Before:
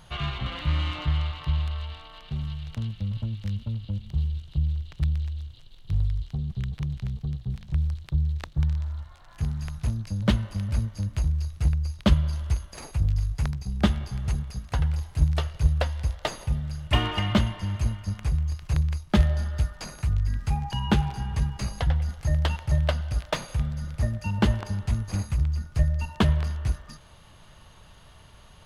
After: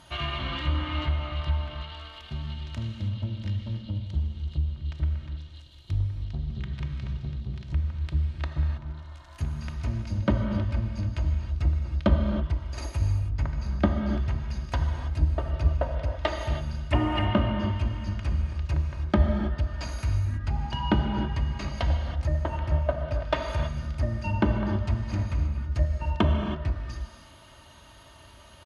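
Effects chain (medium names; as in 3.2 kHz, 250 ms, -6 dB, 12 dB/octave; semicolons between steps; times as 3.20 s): low-pass that closes with the level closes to 1 kHz, closed at -19.5 dBFS; high-pass 71 Hz; comb 3.2 ms, depth 58%; gated-style reverb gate 350 ms flat, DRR 3.5 dB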